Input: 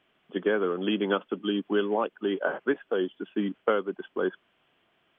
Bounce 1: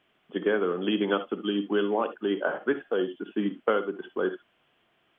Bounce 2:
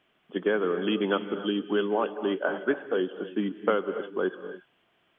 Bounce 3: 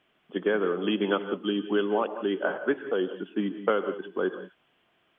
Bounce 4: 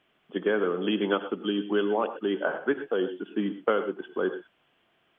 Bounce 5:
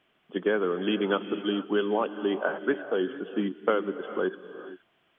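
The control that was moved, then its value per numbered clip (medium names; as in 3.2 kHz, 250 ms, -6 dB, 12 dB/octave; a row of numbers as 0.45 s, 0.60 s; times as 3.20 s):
gated-style reverb, gate: 90 ms, 320 ms, 210 ms, 140 ms, 490 ms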